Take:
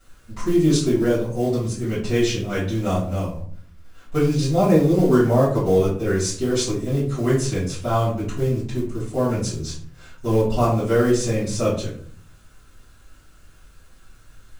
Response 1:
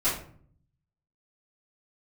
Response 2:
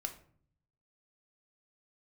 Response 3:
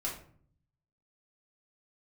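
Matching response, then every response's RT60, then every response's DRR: 1; 0.55 s, 0.55 s, 0.55 s; -13.5 dB, 5.0 dB, -4.5 dB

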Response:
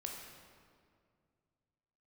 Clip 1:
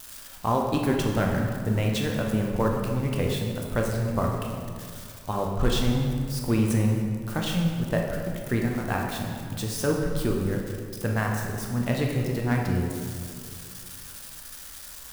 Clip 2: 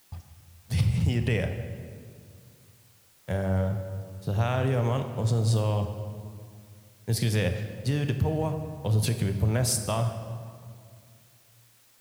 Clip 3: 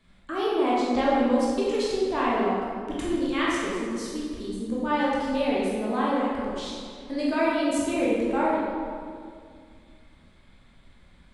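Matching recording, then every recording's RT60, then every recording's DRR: 1; 2.2 s, 2.2 s, 2.2 s; 0.0 dB, 6.5 dB, -7.0 dB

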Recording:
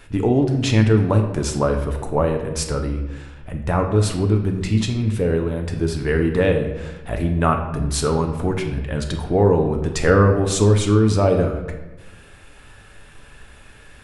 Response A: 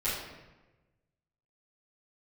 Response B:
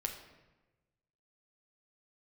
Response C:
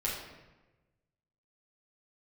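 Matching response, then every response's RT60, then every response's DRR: B; 1.1 s, 1.1 s, 1.1 s; -13.5 dB, 3.0 dB, -6.0 dB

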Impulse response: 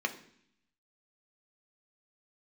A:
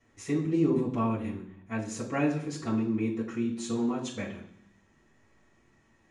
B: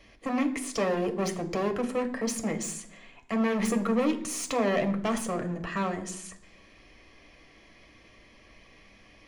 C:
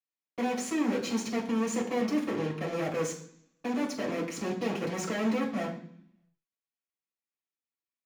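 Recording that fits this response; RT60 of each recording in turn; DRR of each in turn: B; 0.65 s, 0.65 s, 0.65 s; -9.5 dB, 4.5 dB, -5.0 dB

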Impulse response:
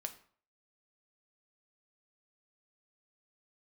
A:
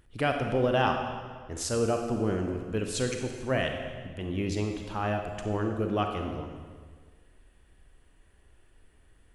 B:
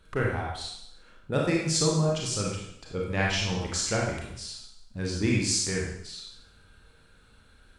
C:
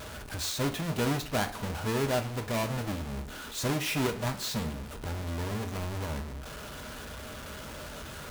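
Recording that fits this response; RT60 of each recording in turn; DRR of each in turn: C; 1.6 s, 0.75 s, 0.50 s; 3.5 dB, -3.0 dB, 5.5 dB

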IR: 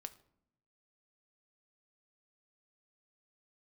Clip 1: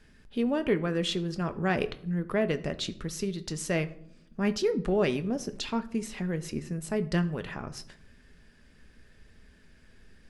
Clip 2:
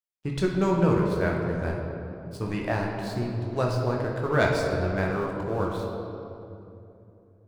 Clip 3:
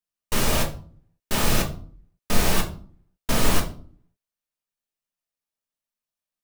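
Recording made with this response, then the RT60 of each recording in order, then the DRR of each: 1; 0.70 s, 2.9 s, 0.45 s; 9.5 dB, -1.5 dB, -0.5 dB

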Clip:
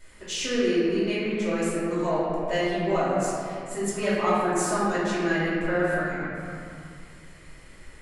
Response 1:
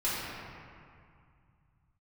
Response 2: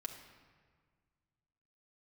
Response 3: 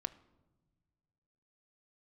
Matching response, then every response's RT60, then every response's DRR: 1; 2.2 s, 1.7 s, no single decay rate; -11.0 dB, 1.5 dB, 11.0 dB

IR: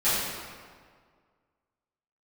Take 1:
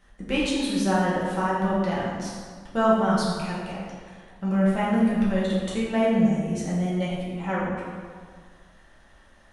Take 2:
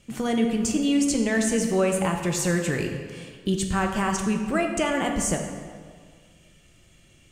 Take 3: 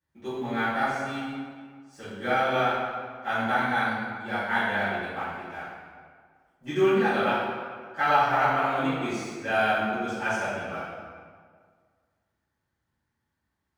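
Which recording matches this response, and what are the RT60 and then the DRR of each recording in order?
3; 1.8 s, 1.8 s, 1.8 s; -7.0 dB, 2.5 dB, -16.5 dB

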